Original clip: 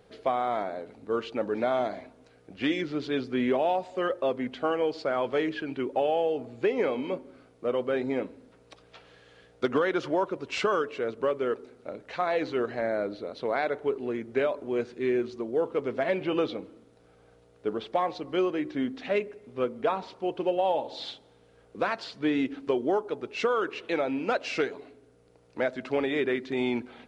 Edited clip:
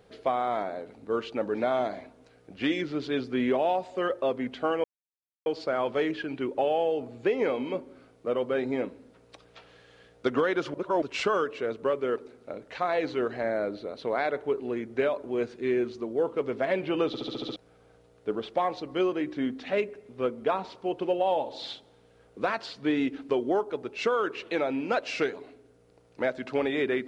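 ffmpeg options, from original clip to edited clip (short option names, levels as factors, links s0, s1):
-filter_complex "[0:a]asplit=11[s0][s1][s2][s3][s4][s5][s6][s7][s8][s9][s10];[s0]atrim=end=4.84,asetpts=PTS-STARTPTS,afade=t=out:st=4.836:d=0.004:c=hsin,apad=pad_dur=0.62[s11];[s1]atrim=start=4.84:end=10.122,asetpts=PTS-STARTPTS,afade=t=in:d=0.004:c=hsin[s12];[s2]atrim=start=10.118:end=10.402,asetpts=PTS-STARTPTS,areverse[s13];[s3]atrim=start=10.398:end=16.522[s14];[s4]atrim=start=16.448:end=16.522[s15];[s5]atrim=start=16.448:end=16.522[s16];[s6]atrim=start=16.448:end=16.522[s17];[s7]atrim=start=16.448:end=16.522[s18];[s8]atrim=start=16.448:end=16.522[s19];[s9]atrim=start=16.448:end=16.522[s20];[s10]atrim=start=16.938[s21];[s11][s12]concat=n=2:v=0:a=1[s22];[s22][s13]acrossfade=d=0.004:c1=hsin:c2=hsin[s23];[s23][s14]acrossfade=d=0.004:c1=hsin:c2=hsin[s24];[s24][s15]acrossfade=d=0.004:c1=hsin:c2=hsin[s25];[s25][s16]acrossfade=d=0.004:c1=hsin:c2=hsin[s26];[s26][s17]acrossfade=d=0.004:c1=hsin:c2=hsin[s27];[s27][s18]acrossfade=d=0.004:c1=hsin:c2=hsin[s28];[s28][s19]acrossfade=d=0.004:c1=hsin:c2=hsin[s29];[s29][s20]acrossfade=d=0.004:c1=hsin:c2=hsin[s30];[s30][s21]acrossfade=d=0.004:c1=hsin:c2=hsin"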